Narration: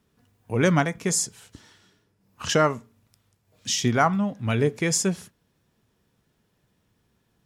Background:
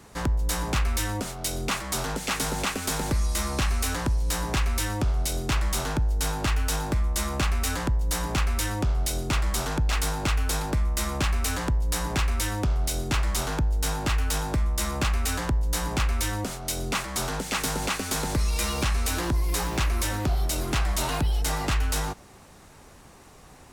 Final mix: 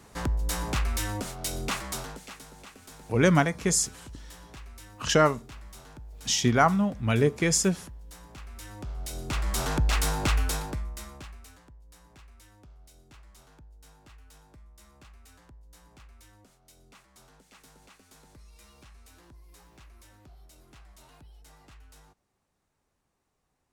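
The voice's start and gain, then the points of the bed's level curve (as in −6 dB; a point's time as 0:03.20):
2.60 s, −0.5 dB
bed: 0:01.85 −3 dB
0:02.45 −20.5 dB
0:08.37 −20.5 dB
0:09.68 0 dB
0:10.39 0 dB
0:11.66 −28 dB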